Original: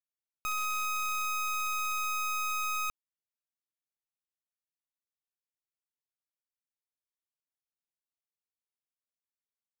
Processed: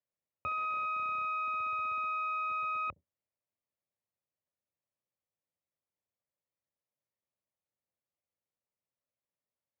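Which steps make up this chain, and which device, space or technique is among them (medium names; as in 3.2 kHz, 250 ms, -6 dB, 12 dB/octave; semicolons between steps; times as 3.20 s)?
sub-octave bass pedal (octave divider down 1 oct, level -2 dB; cabinet simulation 76–2200 Hz, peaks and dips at 79 Hz +4 dB, 560 Hz +10 dB, 1.5 kHz -9 dB); trim +3 dB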